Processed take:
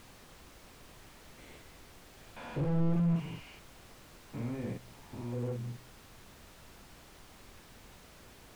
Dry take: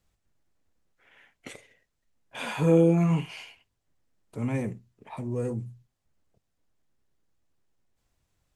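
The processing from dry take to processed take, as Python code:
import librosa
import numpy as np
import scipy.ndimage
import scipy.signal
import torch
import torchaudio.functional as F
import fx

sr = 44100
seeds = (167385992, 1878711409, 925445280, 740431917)

y = fx.spec_steps(x, sr, hold_ms=200)
y = scipy.signal.sosfilt(scipy.signal.butter(4, 45.0, 'highpass', fs=sr, output='sos'), y)
y = fx.doubler(y, sr, ms=42.0, db=-3.0)
y = fx.dmg_noise_colour(y, sr, seeds[0], colour='pink', level_db=-47.0)
y = fx.slew_limit(y, sr, full_power_hz=20.0)
y = F.gain(torch.from_numpy(y), -7.0).numpy()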